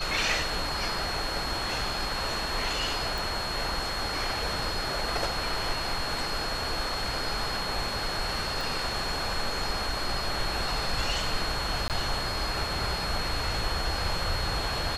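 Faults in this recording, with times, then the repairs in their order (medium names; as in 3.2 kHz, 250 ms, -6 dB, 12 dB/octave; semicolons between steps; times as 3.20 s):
whine 4.3 kHz -34 dBFS
3.18 s: pop
8.61 s: pop
11.88–11.90 s: dropout 18 ms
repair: de-click; band-stop 4.3 kHz, Q 30; interpolate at 11.88 s, 18 ms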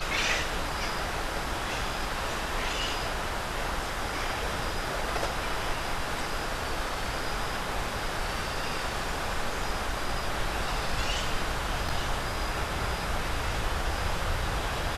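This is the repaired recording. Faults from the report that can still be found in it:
3.18 s: pop
8.61 s: pop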